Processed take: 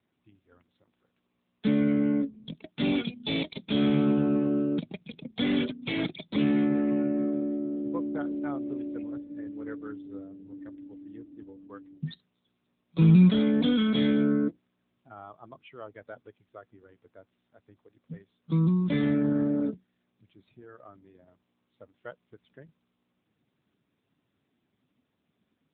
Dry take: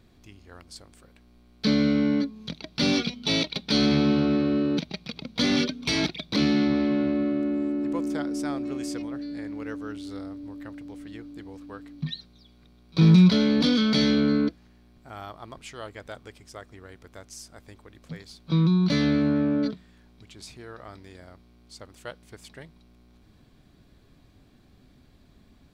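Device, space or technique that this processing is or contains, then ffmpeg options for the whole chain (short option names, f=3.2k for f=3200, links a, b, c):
mobile call with aggressive noise cancelling: -af "highpass=100,afftdn=nr=15:nf=-37,volume=-2dB" -ar 8000 -c:a libopencore_amrnb -b:a 10200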